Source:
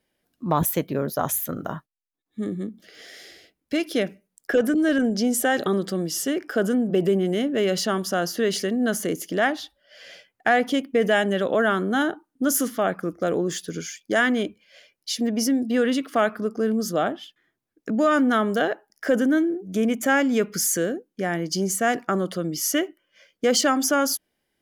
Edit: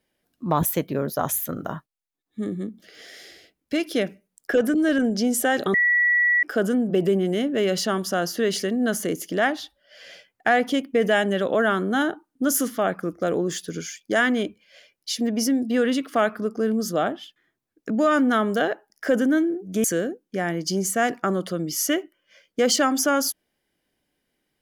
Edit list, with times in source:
5.74–6.43 bleep 1940 Hz -16 dBFS
19.84–20.69 cut

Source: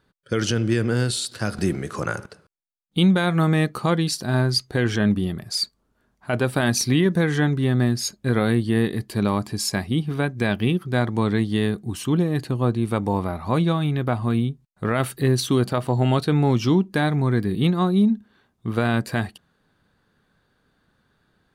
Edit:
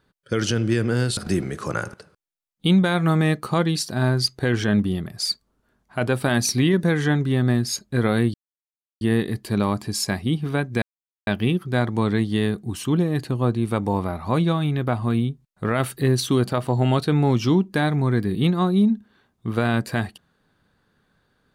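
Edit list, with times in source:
1.17–1.49 cut
8.66 insert silence 0.67 s
10.47 insert silence 0.45 s

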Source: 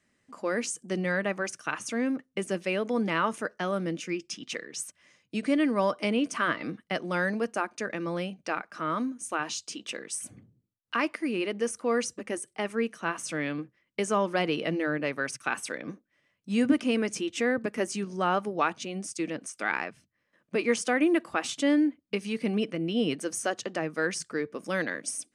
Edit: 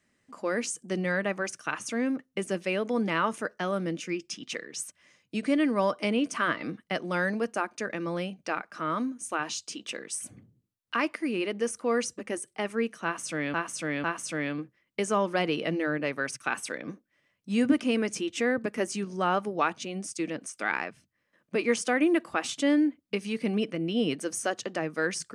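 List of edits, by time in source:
13.04–13.54 loop, 3 plays

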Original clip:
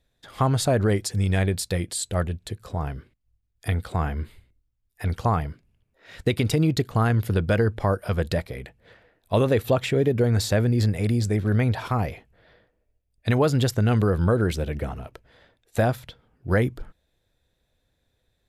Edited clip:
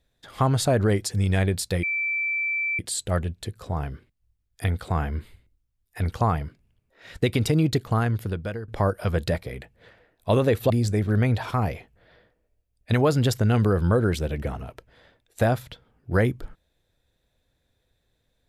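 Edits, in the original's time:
1.83 add tone 2330 Hz -23 dBFS 0.96 s
6.84–7.72 fade out, to -17 dB
9.74–11.07 cut

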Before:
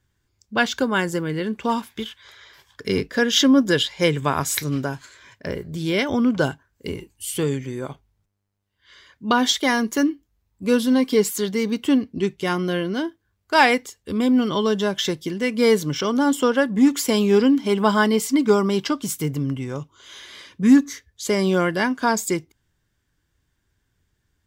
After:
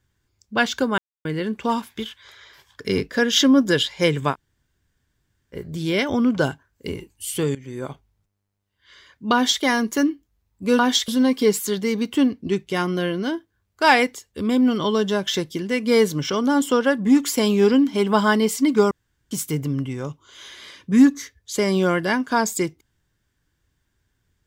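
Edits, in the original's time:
0.98–1.25 mute
4.33–5.55 room tone, crossfade 0.06 s
7.55–7.83 fade in, from -16.5 dB
9.33–9.62 copy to 10.79
18.62–19.02 room tone

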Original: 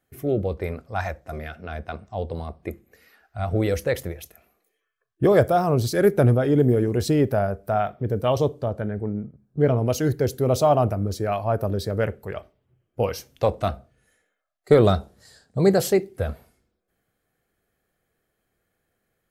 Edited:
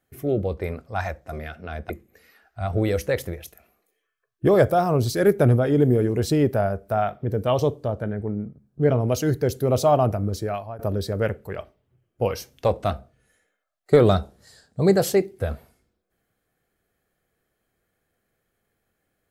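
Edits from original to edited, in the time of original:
1.9–2.68 cut
11.17–11.57 fade out, to -21 dB

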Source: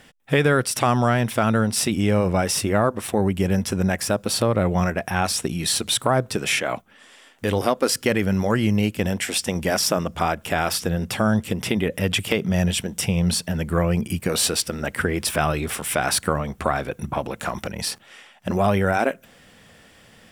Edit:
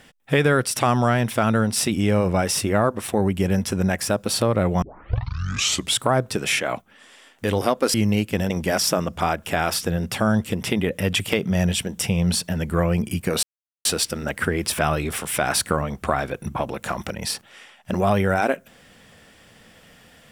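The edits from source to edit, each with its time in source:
4.82 tape start 1.18 s
7.94–8.6 cut
9.16–9.49 cut
14.42 insert silence 0.42 s

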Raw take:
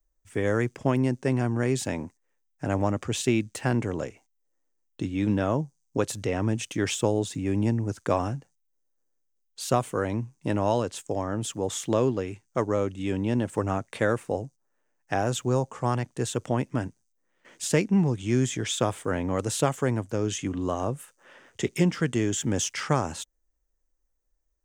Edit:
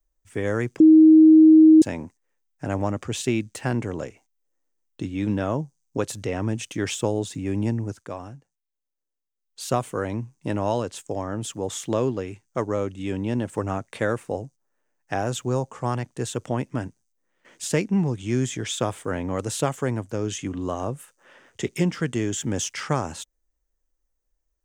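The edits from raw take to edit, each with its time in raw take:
0.8–1.82 bleep 315 Hz -8 dBFS
7.84–9.61 dip -10 dB, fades 0.24 s

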